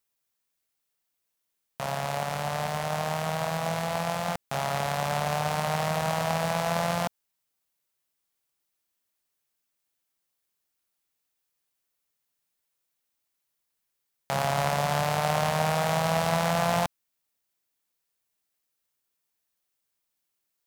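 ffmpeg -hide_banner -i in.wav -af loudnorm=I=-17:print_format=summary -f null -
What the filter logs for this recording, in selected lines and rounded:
Input Integrated:    -27.9 LUFS
Input True Peak:      -8.8 dBTP
Input LRA:             6.8 LU
Input Threshold:     -38.0 LUFS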